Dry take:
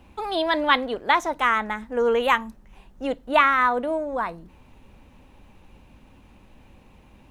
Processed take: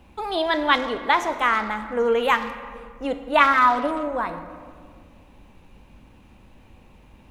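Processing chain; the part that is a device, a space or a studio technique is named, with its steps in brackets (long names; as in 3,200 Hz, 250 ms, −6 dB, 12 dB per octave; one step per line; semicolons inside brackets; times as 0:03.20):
0:03.38–0:04.08: comb filter 7.1 ms, depth 73%
saturated reverb return (on a send at −7 dB: convolution reverb RT60 1.9 s, pre-delay 6 ms + soft clipping −18.5 dBFS, distortion −11 dB)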